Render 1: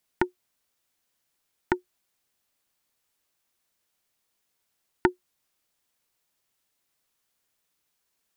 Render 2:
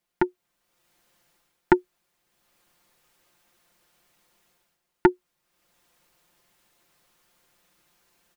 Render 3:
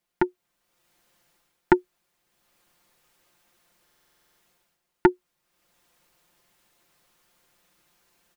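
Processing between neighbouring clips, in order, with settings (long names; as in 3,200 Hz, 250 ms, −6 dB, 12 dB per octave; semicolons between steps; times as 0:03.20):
automatic gain control gain up to 15 dB; high-shelf EQ 3,000 Hz −8.5 dB; comb filter 5.7 ms, depth 57%
buffer that repeats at 0:03.84, samples 2,048, times 11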